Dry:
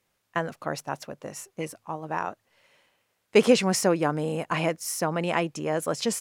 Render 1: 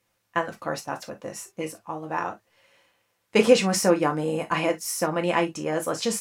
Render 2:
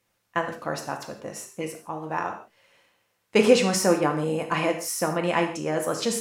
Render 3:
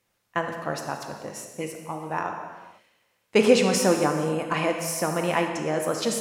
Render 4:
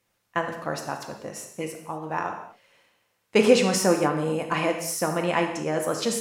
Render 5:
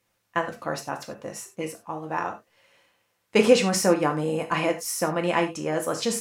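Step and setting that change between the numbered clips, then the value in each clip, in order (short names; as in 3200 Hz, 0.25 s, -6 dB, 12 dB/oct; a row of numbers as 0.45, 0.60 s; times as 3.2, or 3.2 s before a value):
non-linear reverb, gate: 80, 190, 520, 280, 120 ms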